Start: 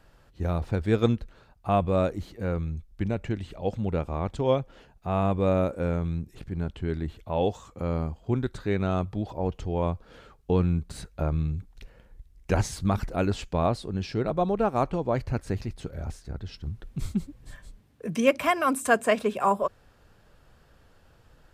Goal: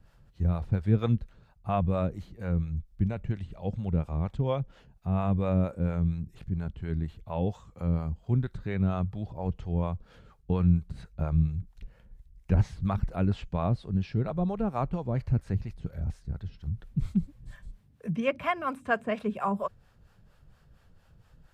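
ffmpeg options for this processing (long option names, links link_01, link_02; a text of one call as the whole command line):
ffmpeg -i in.wav -filter_complex "[0:a]acrossover=split=3600[link_01][link_02];[link_02]acompressor=threshold=-58dB:ratio=4:attack=1:release=60[link_03];[link_01][link_03]amix=inputs=2:normalize=0,acrossover=split=460[link_04][link_05];[link_04]aeval=exprs='val(0)*(1-0.7/2+0.7/2*cos(2*PI*4.3*n/s))':channel_layout=same[link_06];[link_05]aeval=exprs='val(0)*(1-0.7/2-0.7/2*cos(2*PI*4.3*n/s))':channel_layout=same[link_07];[link_06][link_07]amix=inputs=2:normalize=0,lowshelf=frequency=230:width_type=q:width=1.5:gain=6.5,volume=-3dB" out.wav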